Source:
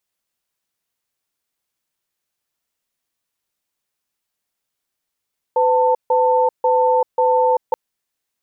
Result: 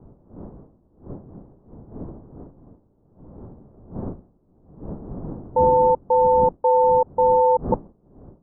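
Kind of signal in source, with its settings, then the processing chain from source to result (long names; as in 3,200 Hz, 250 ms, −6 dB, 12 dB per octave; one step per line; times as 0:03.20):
tone pair in a cadence 505 Hz, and 892 Hz, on 0.39 s, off 0.15 s, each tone −15 dBFS 2.18 s
wind on the microphone 290 Hz −32 dBFS
low-pass filter 1,100 Hz 24 dB per octave
expander for the loud parts 1.5 to 1, over −29 dBFS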